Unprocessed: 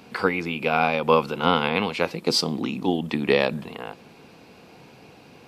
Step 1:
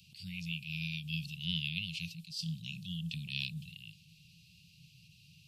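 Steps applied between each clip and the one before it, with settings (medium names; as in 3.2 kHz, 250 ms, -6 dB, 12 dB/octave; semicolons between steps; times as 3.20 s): Chebyshev band-stop 170–2700 Hz, order 5; attacks held to a fixed rise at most 120 dB/s; trim -4.5 dB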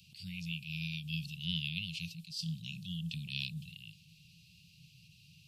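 dynamic bell 1.8 kHz, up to -5 dB, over -56 dBFS, Q 1.8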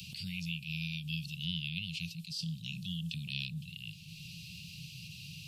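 three bands compressed up and down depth 70%; trim +1 dB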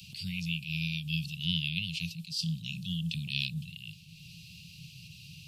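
three bands expanded up and down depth 70%; trim +4.5 dB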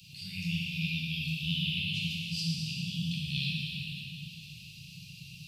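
plate-style reverb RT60 3.2 s, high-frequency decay 0.95×, DRR -6.5 dB; trim -6 dB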